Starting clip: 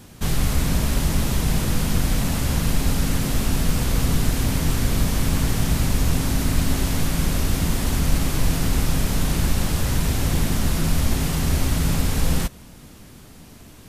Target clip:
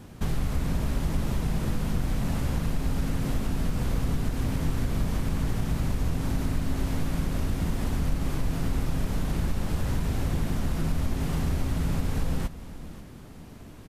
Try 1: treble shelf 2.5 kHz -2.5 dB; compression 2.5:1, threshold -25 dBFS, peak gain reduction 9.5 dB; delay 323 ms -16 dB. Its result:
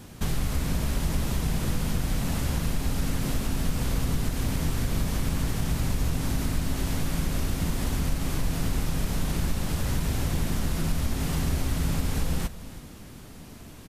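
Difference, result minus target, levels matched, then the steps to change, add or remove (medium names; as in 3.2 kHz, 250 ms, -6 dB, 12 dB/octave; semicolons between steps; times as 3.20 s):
echo 212 ms early; 4 kHz band +5.0 dB
change: treble shelf 2.5 kHz -10.5 dB; change: delay 535 ms -16 dB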